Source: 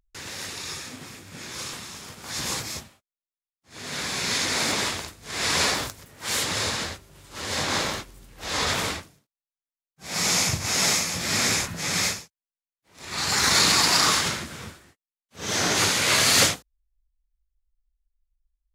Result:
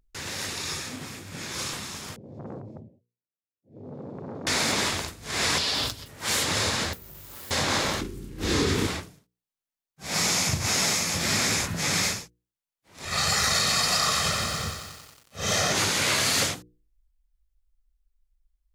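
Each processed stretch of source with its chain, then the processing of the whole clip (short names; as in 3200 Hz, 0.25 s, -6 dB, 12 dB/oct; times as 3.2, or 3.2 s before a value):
2.16–4.47 elliptic band-pass 100–540 Hz + core saturation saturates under 670 Hz
5.58–6.08 band shelf 3800 Hz +9 dB 1.1 oct + compressor 5:1, threshold -22 dBFS + notch comb 180 Hz
6.93–7.51 careless resampling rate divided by 3×, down none, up zero stuff + compressor 5:1, threshold -41 dBFS
8.01–8.87 expander -46 dBFS + resonant low shelf 490 Hz +8.5 dB, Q 3 + doubler 32 ms -5 dB
13.05–15.72 comb 1.6 ms, depth 66% + lo-fi delay 91 ms, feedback 80%, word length 7-bit, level -13 dB
whole clip: low shelf 470 Hz +3 dB; notches 60/120/180/240/300/360/420/480 Hz; compressor, threshold -23 dBFS; gain +2 dB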